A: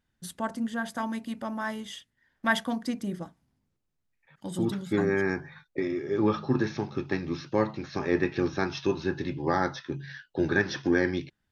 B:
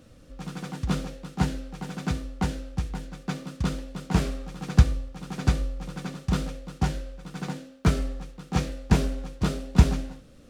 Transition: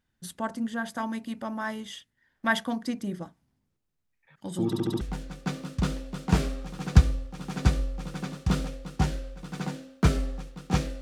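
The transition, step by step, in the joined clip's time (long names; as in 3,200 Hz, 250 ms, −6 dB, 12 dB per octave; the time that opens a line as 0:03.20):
A
0:04.66: stutter in place 0.07 s, 5 plays
0:05.01: continue with B from 0:02.83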